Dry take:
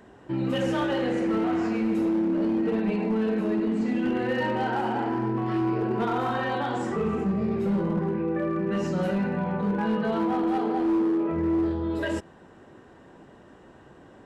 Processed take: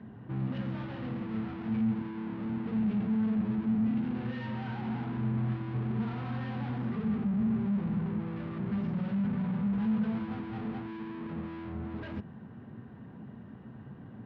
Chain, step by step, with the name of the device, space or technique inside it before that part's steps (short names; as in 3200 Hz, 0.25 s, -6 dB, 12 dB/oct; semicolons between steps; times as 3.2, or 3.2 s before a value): 4.32–4.76 tilt shelf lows -4.5 dB; guitar amplifier (tube stage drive 38 dB, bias 0.45; tone controls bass +13 dB, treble -11 dB; speaker cabinet 96–4400 Hz, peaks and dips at 120 Hz +8 dB, 220 Hz +9 dB, 340 Hz -5 dB, 560 Hz -4 dB); gain -3 dB